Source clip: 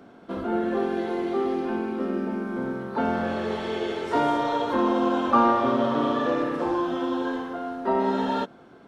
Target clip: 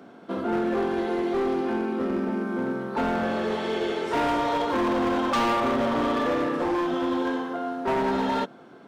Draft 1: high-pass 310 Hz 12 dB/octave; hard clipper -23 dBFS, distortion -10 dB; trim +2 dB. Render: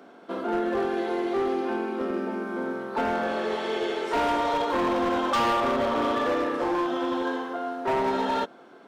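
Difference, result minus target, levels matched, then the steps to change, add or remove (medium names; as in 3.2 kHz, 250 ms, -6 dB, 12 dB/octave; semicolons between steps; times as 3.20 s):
125 Hz band -5.0 dB
change: high-pass 130 Hz 12 dB/octave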